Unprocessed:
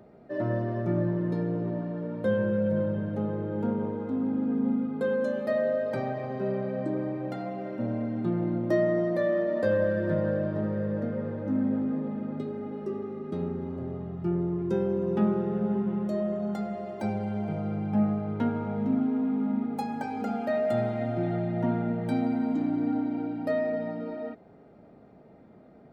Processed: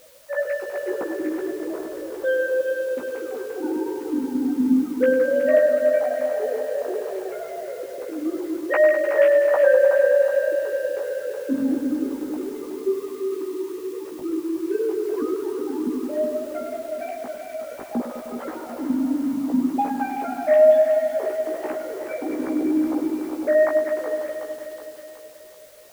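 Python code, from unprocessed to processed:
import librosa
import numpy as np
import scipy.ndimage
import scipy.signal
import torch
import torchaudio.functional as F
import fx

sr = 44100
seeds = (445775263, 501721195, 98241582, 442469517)

p1 = fx.sine_speech(x, sr)
p2 = fx.notch(p1, sr, hz=1100.0, q=30.0)
p3 = fx.quant_dither(p2, sr, seeds[0], bits=8, dither='triangular')
p4 = p2 + (p3 * 10.0 ** (-6.5 / 20.0))
p5 = fx.doubler(p4, sr, ms=16.0, db=-4.0)
p6 = fx.echo_feedback(p5, sr, ms=371, feedback_pct=54, wet_db=-9)
y = fx.echo_crushed(p6, sr, ms=101, feedback_pct=80, bits=7, wet_db=-11.0)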